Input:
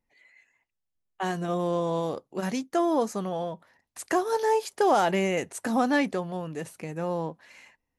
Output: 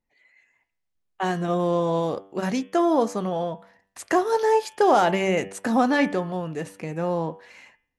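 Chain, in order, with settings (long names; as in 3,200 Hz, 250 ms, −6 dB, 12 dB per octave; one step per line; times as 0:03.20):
high-shelf EQ 8,500 Hz −10 dB
hum removal 97.15 Hz, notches 36
automatic gain control gain up to 6 dB
level −1.5 dB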